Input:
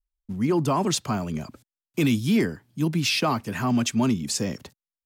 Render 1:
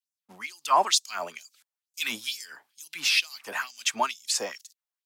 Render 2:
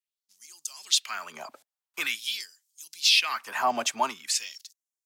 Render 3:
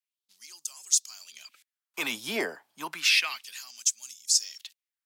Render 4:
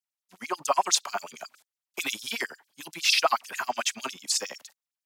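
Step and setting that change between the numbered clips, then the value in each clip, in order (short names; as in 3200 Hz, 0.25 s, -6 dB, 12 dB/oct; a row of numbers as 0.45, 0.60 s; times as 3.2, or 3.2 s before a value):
LFO high-pass, rate: 2.2, 0.46, 0.31, 11 Hz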